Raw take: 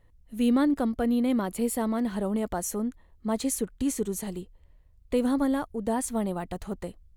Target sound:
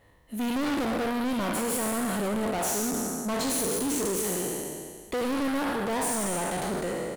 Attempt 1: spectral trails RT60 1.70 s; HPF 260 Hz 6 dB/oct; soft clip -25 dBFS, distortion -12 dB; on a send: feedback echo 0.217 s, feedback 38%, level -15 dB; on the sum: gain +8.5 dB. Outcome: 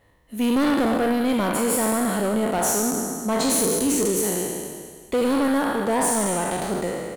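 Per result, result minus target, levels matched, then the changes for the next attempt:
echo 0.101 s late; soft clip: distortion -7 dB
change: feedback echo 0.116 s, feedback 38%, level -15 dB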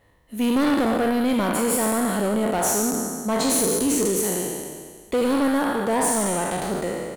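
soft clip: distortion -7 dB
change: soft clip -35 dBFS, distortion -5 dB

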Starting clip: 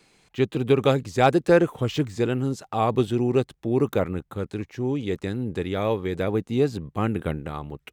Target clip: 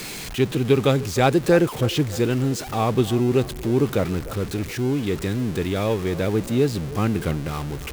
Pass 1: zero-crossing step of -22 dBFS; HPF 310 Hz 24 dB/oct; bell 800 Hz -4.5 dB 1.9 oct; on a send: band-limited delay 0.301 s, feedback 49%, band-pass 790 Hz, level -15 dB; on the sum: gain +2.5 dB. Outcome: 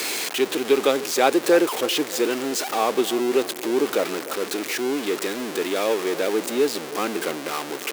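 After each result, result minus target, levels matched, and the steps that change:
zero-crossing step: distortion +6 dB; 250 Hz band -3.0 dB
change: zero-crossing step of -29.5 dBFS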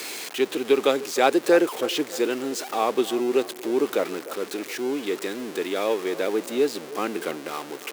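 250 Hz band -2.5 dB
remove: HPF 310 Hz 24 dB/oct

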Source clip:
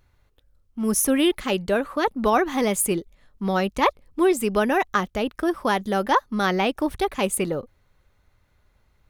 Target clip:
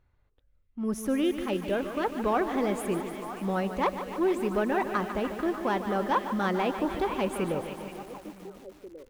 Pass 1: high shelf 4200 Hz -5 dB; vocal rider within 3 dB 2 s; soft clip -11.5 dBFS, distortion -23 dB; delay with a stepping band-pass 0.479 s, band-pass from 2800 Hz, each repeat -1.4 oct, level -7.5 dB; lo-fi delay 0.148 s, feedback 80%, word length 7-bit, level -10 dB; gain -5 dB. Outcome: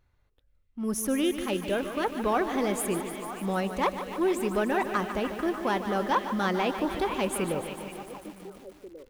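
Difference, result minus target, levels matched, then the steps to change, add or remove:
8000 Hz band +8.0 dB
change: high shelf 4200 Hz -16.5 dB

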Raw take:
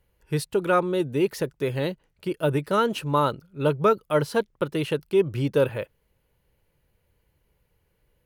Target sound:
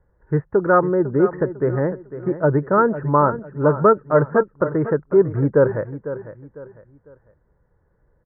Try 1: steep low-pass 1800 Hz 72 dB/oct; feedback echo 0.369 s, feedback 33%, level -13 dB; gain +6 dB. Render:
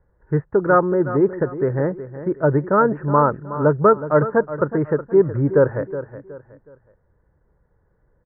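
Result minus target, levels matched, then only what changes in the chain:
echo 0.132 s early
change: feedback echo 0.501 s, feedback 33%, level -13 dB

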